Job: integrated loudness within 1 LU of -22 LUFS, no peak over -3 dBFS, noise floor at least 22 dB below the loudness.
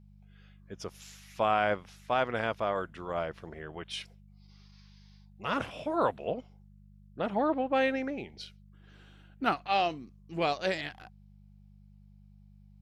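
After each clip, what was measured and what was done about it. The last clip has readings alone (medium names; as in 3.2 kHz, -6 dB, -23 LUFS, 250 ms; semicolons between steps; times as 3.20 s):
hum 50 Hz; highest harmonic 200 Hz; hum level -53 dBFS; loudness -32.0 LUFS; peak level -12.5 dBFS; loudness target -22.0 LUFS
-> de-hum 50 Hz, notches 4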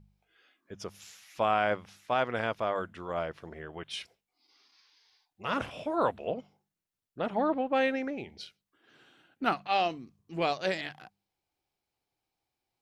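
hum not found; loudness -32.0 LUFS; peak level -12.0 dBFS; loudness target -22.0 LUFS
-> trim +10 dB; peak limiter -3 dBFS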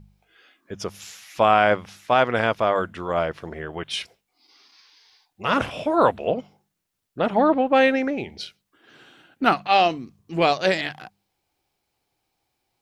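loudness -22.0 LUFS; peak level -3.0 dBFS; noise floor -77 dBFS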